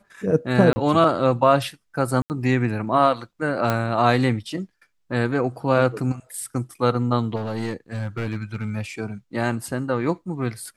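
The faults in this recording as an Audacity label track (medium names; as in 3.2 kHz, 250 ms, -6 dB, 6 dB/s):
0.730000	0.760000	dropout 30 ms
2.220000	2.300000	dropout 79 ms
3.700000	3.700000	pop -8 dBFS
7.350000	8.700000	clipped -21.5 dBFS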